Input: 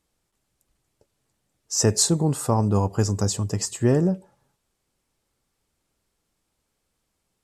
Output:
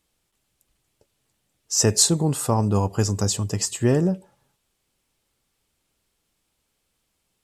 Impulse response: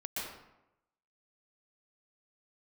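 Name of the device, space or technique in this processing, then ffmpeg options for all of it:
presence and air boost: -af "equalizer=frequency=3000:width_type=o:width=1.1:gain=5.5,highshelf=frequency=10000:gain=7"

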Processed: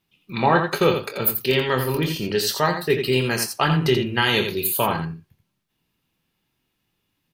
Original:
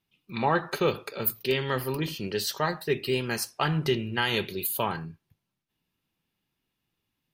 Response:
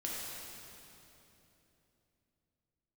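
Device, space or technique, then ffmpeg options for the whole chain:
slapback doubling: -filter_complex "[0:a]asplit=3[link_01][link_02][link_03];[link_02]adelay=24,volume=-9dB[link_04];[link_03]adelay=85,volume=-7dB[link_05];[link_01][link_04][link_05]amix=inputs=3:normalize=0,volume=6dB"

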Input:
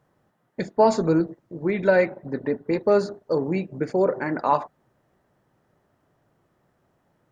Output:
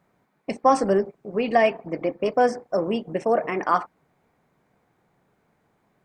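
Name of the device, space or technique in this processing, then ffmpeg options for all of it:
nightcore: -af "asetrate=53361,aresample=44100"

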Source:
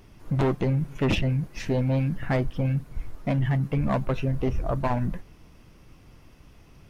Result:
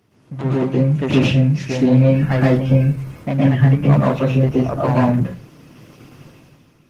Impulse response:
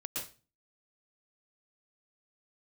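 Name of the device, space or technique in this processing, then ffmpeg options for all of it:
far-field microphone of a smart speaker: -filter_complex "[0:a]asplit=3[link_01][link_02][link_03];[link_01]afade=type=out:start_time=3.9:duration=0.02[link_04];[link_02]equalizer=frequency=290:width=1.6:gain=-2,afade=type=in:start_time=3.9:duration=0.02,afade=type=out:start_time=4.71:duration=0.02[link_05];[link_03]afade=type=in:start_time=4.71:duration=0.02[link_06];[link_04][link_05][link_06]amix=inputs=3:normalize=0[link_07];[1:a]atrim=start_sample=2205[link_08];[link_07][link_08]afir=irnorm=-1:irlink=0,highpass=frequency=100:width=0.5412,highpass=frequency=100:width=1.3066,dynaudnorm=framelen=120:gausssize=11:maxgain=14dB,volume=-1dB" -ar 48000 -c:a libopus -b:a 16k

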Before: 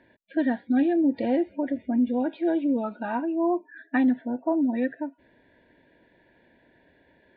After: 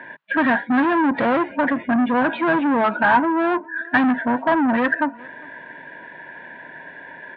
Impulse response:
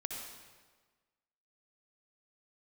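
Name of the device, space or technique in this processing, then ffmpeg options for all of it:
overdrive pedal into a guitar cabinet: -filter_complex "[0:a]asettb=1/sr,asplit=3[link_01][link_02][link_03];[link_01]atrim=end=3.164[link_04];[link_02]atrim=start=3.16:end=3.85,asetpts=PTS-STARTPTS,afade=type=in:duration=0.004:curve=qsin,afade=type=out:start_time=0.686:duration=0.004:curve=qsin,equalizer=frequency=125:width_type=o:width=1:gain=7,equalizer=frequency=1000:width_type=o:width=1:gain=-4,equalizer=frequency=2000:width_type=o:width=1:gain=-12[link_05];[link_03]atrim=start=3.846[link_06];[link_04][link_05]acrossfade=duration=0.004:curve1=hsin:curve2=qsin[link_07];[link_07][link_06]acrossfade=duration=0.004:curve1=qsin:curve2=hsin,asplit=2[link_08][link_09];[link_09]highpass=frequency=720:poles=1,volume=26dB,asoftclip=type=tanh:threshold=-13.5dB[link_10];[link_08][link_10]amix=inputs=2:normalize=0,lowpass=frequency=2600:poles=1,volume=-6dB,highpass=78,equalizer=frequency=150:width_type=q:width=4:gain=9,equalizer=frequency=350:width_type=q:width=4:gain=-3,equalizer=frequency=490:width_type=q:width=4:gain=-3,equalizer=frequency=1000:width_type=q:width=4:gain=9,equalizer=frequency=1600:width_type=q:width=4:gain=9,lowpass=frequency=3400:width=0.5412,lowpass=frequency=3400:width=1.3066,asplit=2[link_11][link_12];[link_12]adelay=402.3,volume=-24dB,highshelf=frequency=4000:gain=-9.05[link_13];[link_11][link_13]amix=inputs=2:normalize=0,volume=1.5dB"

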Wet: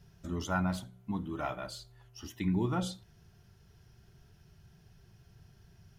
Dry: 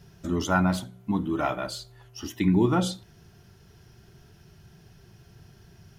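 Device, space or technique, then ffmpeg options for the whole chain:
low shelf boost with a cut just above: -af "lowshelf=frequency=91:gain=6.5,equalizer=frequency=310:width_type=o:width=0.83:gain=-4,volume=-8.5dB"

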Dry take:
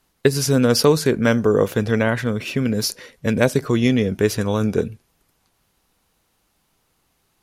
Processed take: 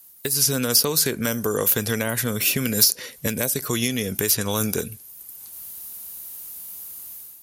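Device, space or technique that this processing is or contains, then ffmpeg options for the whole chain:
FM broadcast chain: -filter_complex "[0:a]highpass=43,dynaudnorm=framelen=310:gausssize=3:maxgain=11.5dB,acrossover=split=870|6100[link_01][link_02][link_03];[link_01]acompressor=threshold=-19dB:ratio=4[link_04];[link_02]acompressor=threshold=-25dB:ratio=4[link_05];[link_03]acompressor=threshold=-41dB:ratio=4[link_06];[link_04][link_05][link_06]amix=inputs=3:normalize=0,aemphasis=mode=production:type=50fm,alimiter=limit=-9dB:level=0:latency=1:release=396,asoftclip=type=hard:threshold=-10.5dB,lowpass=frequency=15000:width=0.5412,lowpass=frequency=15000:width=1.3066,aemphasis=mode=production:type=50fm,volume=-2.5dB"

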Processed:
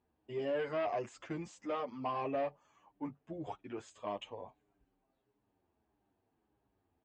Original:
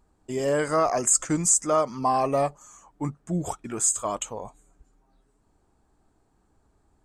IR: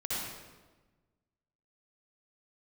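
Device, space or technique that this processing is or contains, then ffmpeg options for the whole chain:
barber-pole flanger into a guitar amplifier: -filter_complex "[0:a]asettb=1/sr,asplit=3[link_01][link_02][link_03];[link_01]atrim=end=3.934[link_04];[link_02]atrim=start=3.93:end=4.39,asetpts=PTS-STARTPTS,afade=type=in:duration=0.004:curve=qsin,afade=type=out:start_time=0.456:duration=0.004:curve=qsin,bandreject=frequency=1400:width=5.2[link_05];[link_03]atrim=start=4.386[link_06];[link_04][link_05]acrossfade=duration=0.004:curve1=hsin:curve2=qsin[link_07];[link_07][link_06]acrossfade=duration=0.004:curve1=qsin:curve2=hsin,asplit=2[link_08][link_09];[link_09]adelay=8.6,afreqshift=-1.6[link_10];[link_08][link_10]amix=inputs=2:normalize=1,asoftclip=type=tanh:threshold=-21dB,highpass=94,equalizer=frequency=160:width_type=q:width=4:gain=-7,equalizer=frequency=1300:width_type=q:width=4:gain=-7,equalizer=frequency=2800:width_type=q:width=4:gain=4,lowpass=frequency=3600:width=0.5412,lowpass=frequency=3600:width=1.3066,volume=-6.5dB"

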